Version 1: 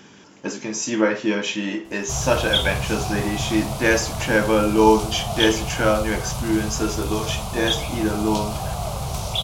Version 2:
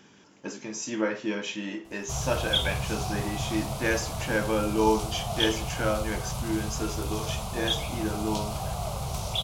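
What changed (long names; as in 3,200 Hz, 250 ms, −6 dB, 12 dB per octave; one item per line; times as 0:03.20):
speech −8.5 dB
background −5.0 dB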